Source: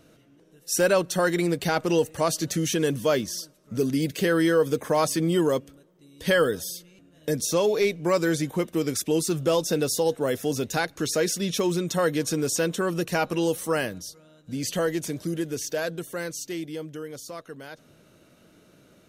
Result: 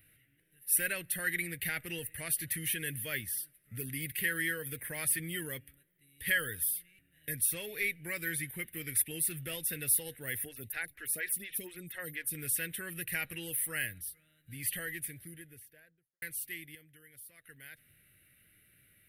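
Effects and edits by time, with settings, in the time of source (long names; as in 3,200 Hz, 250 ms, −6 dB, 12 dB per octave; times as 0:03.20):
0:10.45–0:12.35: phaser with staggered stages 4.2 Hz
0:14.71–0:16.22: fade out and dull
0:16.75–0:17.44: clip gain −7.5 dB
whole clip: drawn EQ curve 110 Hz 0 dB, 190 Hz −13 dB, 1,100 Hz −22 dB, 1,900 Hz +9 dB, 6,700 Hz −19 dB, 9,900 Hz +12 dB; level −5.5 dB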